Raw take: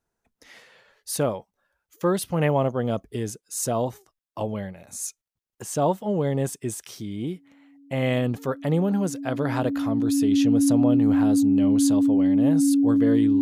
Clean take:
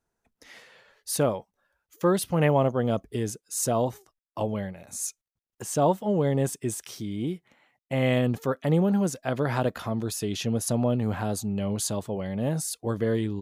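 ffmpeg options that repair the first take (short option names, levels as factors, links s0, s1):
-af "bandreject=f=280:w=30"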